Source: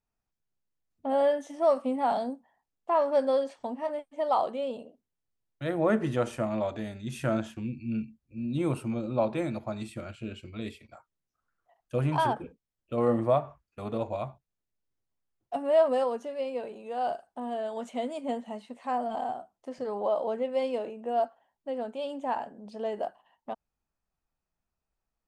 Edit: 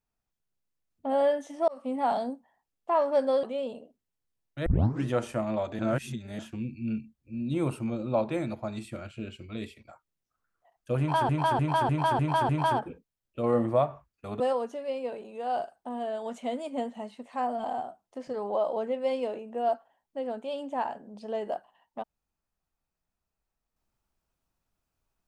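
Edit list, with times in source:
0:01.68–0:01.98: fade in
0:03.43–0:04.47: remove
0:05.70: tape start 0.40 s
0:06.83–0:07.43: reverse
0:12.03–0:12.33: repeat, 6 plays
0:13.94–0:15.91: remove

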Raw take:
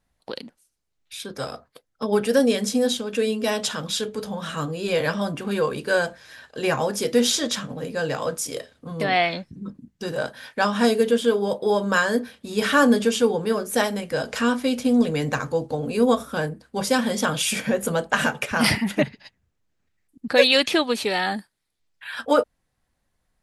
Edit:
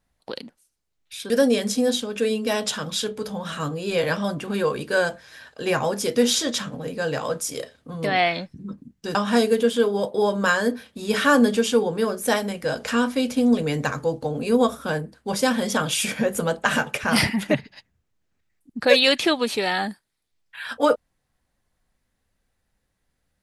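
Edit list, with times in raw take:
0:01.30–0:02.27: remove
0:10.12–0:10.63: remove

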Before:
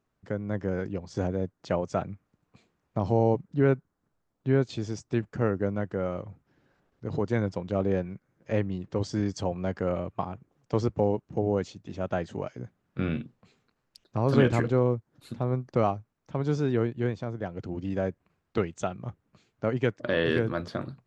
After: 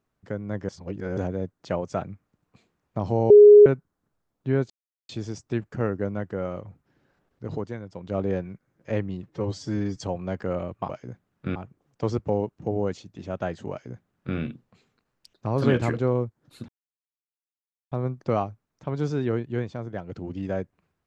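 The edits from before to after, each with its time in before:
0:00.69–0:01.17: reverse
0:03.30–0:03.66: beep over 415 Hz −6.5 dBFS
0:04.70: splice in silence 0.39 s
0:07.11–0:07.77: duck −11 dB, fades 0.28 s
0:08.84–0:09.33: time-stretch 1.5×
0:12.42–0:13.08: duplicate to 0:10.26
0:15.39: splice in silence 1.23 s

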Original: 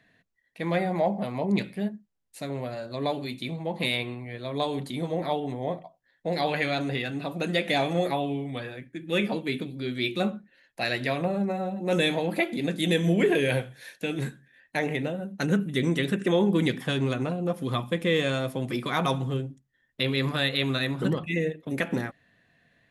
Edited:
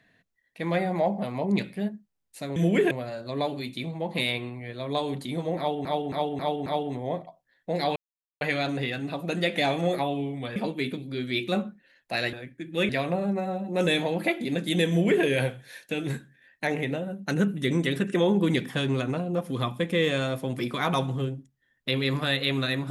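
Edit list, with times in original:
0:05.23–0:05.50: repeat, 5 plays
0:06.53: splice in silence 0.45 s
0:08.68–0:09.24: move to 0:11.01
0:13.01–0:13.36: duplicate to 0:02.56

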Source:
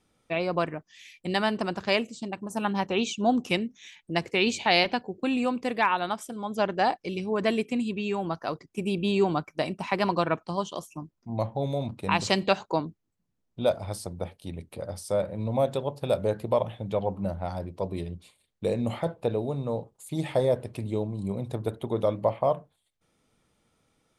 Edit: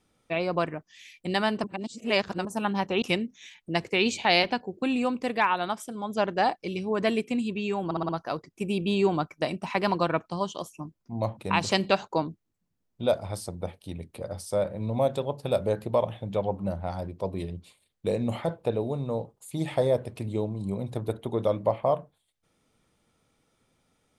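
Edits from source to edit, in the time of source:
0:01.64–0:02.45: reverse
0:03.02–0:03.43: remove
0:08.26: stutter 0.06 s, 5 plays
0:11.54–0:11.95: remove

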